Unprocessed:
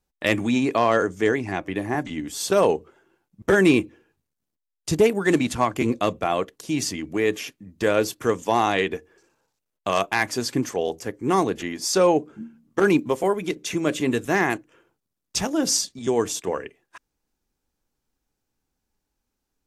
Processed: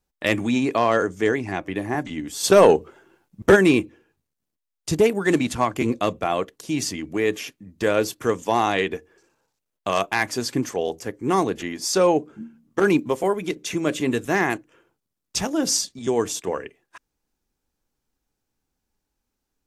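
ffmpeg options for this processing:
-filter_complex "[0:a]asplit=3[a][b][c];[a]afade=t=out:st=2.43:d=0.02[d];[b]acontrast=75,afade=t=in:st=2.43:d=0.02,afade=t=out:st=3.55:d=0.02[e];[c]afade=t=in:st=3.55:d=0.02[f];[d][e][f]amix=inputs=3:normalize=0"

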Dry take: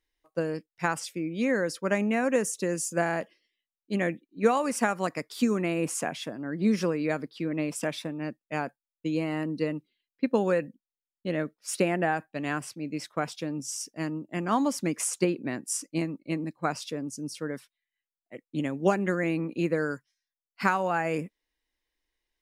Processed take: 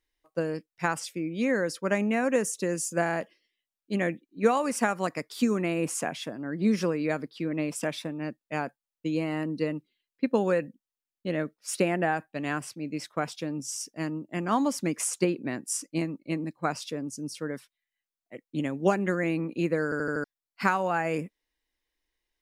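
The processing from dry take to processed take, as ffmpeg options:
-filter_complex "[0:a]asplit=6[a][b][c][d][e][f];[a]atrim=end=19.922[g];[b]atrim=start=19.838:end=19.922[h];[c]atrim=start=19.838:end=19.922[i];[d]atrim=start=19.838:end=19.922[j];[e]atrim=start=19.838:end=19.922[k];[f]atrim=start=20.238[l];[g][h]acrossfade=d=0.004:c1=hsin:c2=hsin[m];[m][i]acrossfade=d=0.004:c1=hsin:c2=hsin[n];[n][j]acrossfade=d=0.004:c1=hsin:c2=hsin[o];[o][k]acrossfade=d=0.004:c1=hsin:c2=hsin[p];[p][l]acrossfade=d=0.004:c1=hsin:c2=hsin"

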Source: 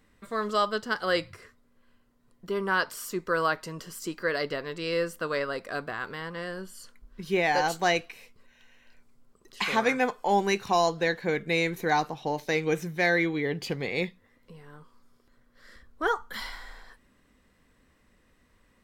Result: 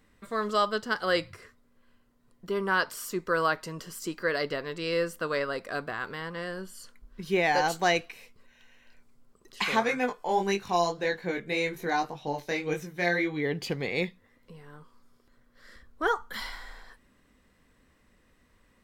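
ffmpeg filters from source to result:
-filter_complex "[0:a]asplit=3[a][b][c];[a]afade=t=out:st=9.8:d=0.02[d];[b]flanger=delay=20:depth=3.1:speed=1.8,afade=t=in:st=9.8:d=0.02,afade=t=out:st=13.4:d=0.02[e];[c]afade=t=in:st=13.4:d=0.02[f];[d][e][f]amix=inputs=3:normalize=0"

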